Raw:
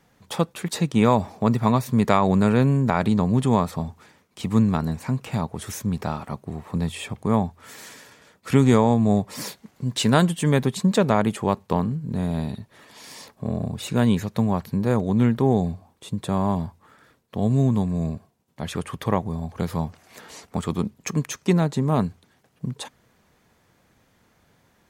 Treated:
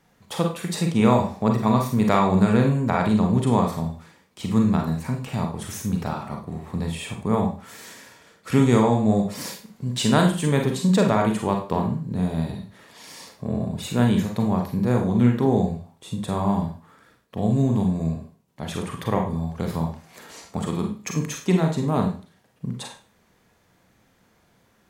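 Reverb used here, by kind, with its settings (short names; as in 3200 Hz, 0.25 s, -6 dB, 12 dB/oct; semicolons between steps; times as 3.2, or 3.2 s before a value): Schroeder reverb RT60 0.38 s, combs from 33 ms, DRR 2 dB; gain -2 dB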